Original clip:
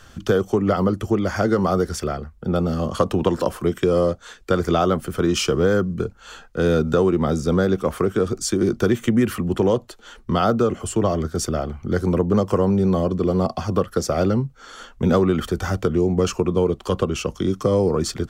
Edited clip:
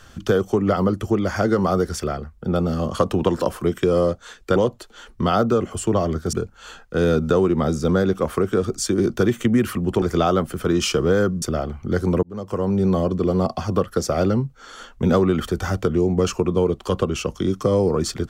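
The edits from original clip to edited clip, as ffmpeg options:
ffmpeg -i in.wav -filter_complex "[0:a]asplit=6[link_01][link_02][link_03][link_04][link_05][link_06];[link_01]atrim=end=4.562[link_07];[link_02]atrim=start=9.648:end=11.422[link_08];[link_03]atrim=start=5.958:end=9.652[link_09];[link_04]atrim=start=4.558:end=5.962[link_10];[link_05]atrim=start=11.418:end=12.23,asetpts=PTS-STARTPTS,afade=type=out:start_time=0.808:duration=0.004:curve=hsin[link_11];[link_06]atrim=start=12.23,asetpts=PTS-STARTPTS,afade=type=in:duration=0.62[link_12];[link_07][link_08]acrossfade=duration=0.004:curve1=hsin:curve2=hsin[link_13];[link_13][link_09]acrossfade=duration=0.004:curve1=hsin:curve2=hsin[link_14];[link_14][link_10]acrossfade=duration=0.004:curve1=hsin:curve2=hsin[link_15];[link_11][link_12]concat=n=2:v=0:a=1[link_16];[link_15][link_16]acrossfade=duration=0.004:curve1=hsin:curve2=hsin" out.wav

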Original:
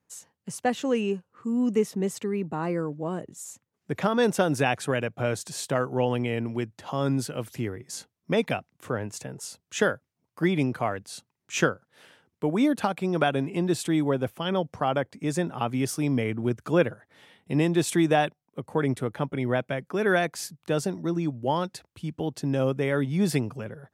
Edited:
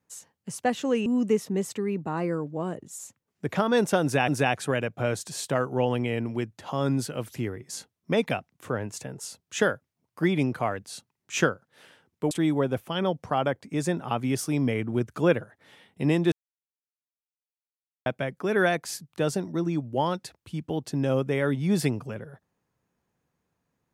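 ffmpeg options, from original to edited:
ffmpeg -i in.wav -filter_complex "[0:a]asplit=6[link_01][link_02][link_03][link_04][link_05][link_06];[link_01]atrim=end=1.062[link_07];[link_02]atrim=start=1.518:end=4.742[link_08];[link_03]atrim=start=4.478:end=12.512[link_09];[link_04]atrim=start=13.808:end=17.82,asetpts=PTS-STARTPTS,afade=type=out:start_time=4.008:duration=0.004:curve=hsin[link_10];[link_05]atrim=start=17.82:end=19.56,asetpts=PTS-STARTPTS,volume=0[link_11];[link_06]atrim=start=19.56,asetpts=PTS-STARTPTS,afade=type=in:duration=0.004:curve=hsin[link_12];[link_07][link_08]acrossfade=duration=0.004:curve1=hsin:curve2=hsin[link_13];[link_13][link_09]acrossfade=duration=0.004:curve1=hsin:curve2=hsin[link_14];[link_10][link_11][link_12]concat=n=3:v=0:a=1[link_15];[link_14][link_15]acrossfade=duration=0.004:curve1=hsin:curve2=hsin" out.wav

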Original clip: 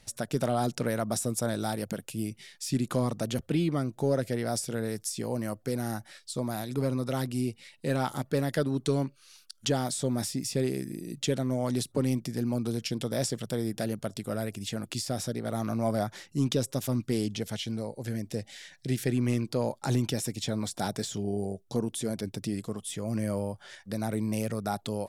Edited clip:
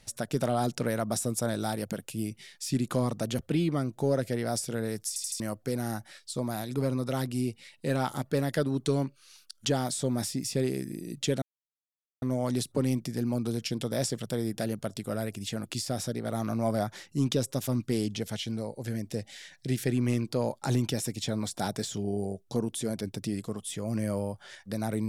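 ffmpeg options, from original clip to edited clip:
ffmpeg -i in.wav -filter_complex "[0:a]asplit=6[link_01][link_02][link_03][link_04][link_05][link_06];[link_01]atrim=end=5.162[link_07];[link_02]atrim=start=5.078:end=5.162[link_08];[link_03]atrim=start=5.078:end=5.162[link_09];[link_04]atrim=start=5.078:end=5.162[link_10];[link_05]atrim=start=5.398:end=11.42,asetpts=PTS-STARTPTS,afade=type=out:start_time=6.018:duration=0.004:curve=hsin,apad=pad_dur=0.8[link_11];[link_06]atrim=start=11.42,asetpts=PTS-STARTPTS,afade=type=in:duration=0.004:curve=hsin[link_12];[link_07][link_08]acrossfade=duration=0.004:curve1=hsin:curve2=hsin[link_13];[link_13][link_09]acrossfade=duration=0.004:curve1=hsin:curve2=hsin[link_14];[link_14][link_10]acrossfade=duration=0.004:curve1=hsin:curve2=hsin[link_15];[link_11][link_12]concat=n=2:v=0:a=1[link_16];[link_15][link_16]acrossfade=duration=0.004:curve1=hsin:curve2=hsin" out.wav

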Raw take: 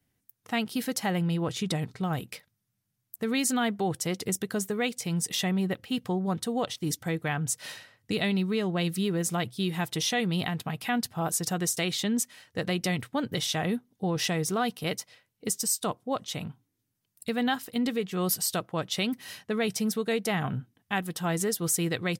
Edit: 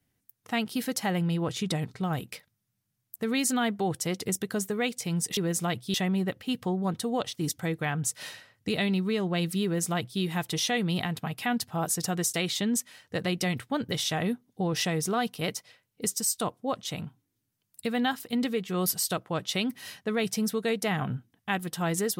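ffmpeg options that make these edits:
ffmpeg -i in.wav -filter_complex "[0:a]asplit=3[link_01][link_02][link_03];[link_01]atrim=end=5.372[link_04];[link_02]atrim=start=9.068:end=9.642[link_05];[link_03]atrim=start=5.368[link_06];[link_04][link_05]acrossfade=duration=0.004:curve1=hsin:curve2=hsin[link_07];[link_07][link_06]acrossfade=duration=0.004:curve1=hsin:curve2=hsin" out.wav

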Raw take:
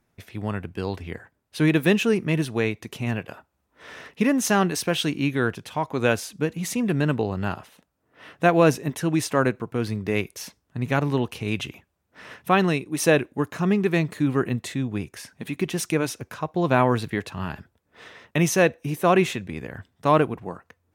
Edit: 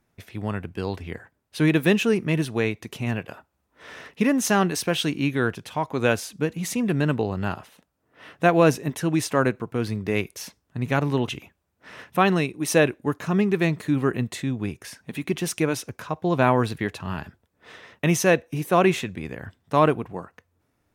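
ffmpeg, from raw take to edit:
ffmpeg -i in.wav -filter_complex "[0:a]asplit=2[link_01][link_02];[link_01]atrim=end=11.282[link_03];[link_02]atrim=start=11.598[link_04];[link_03][link_04]acrossfade=duration=0.004:curve1=hsin:curve2=hsin" out.wav

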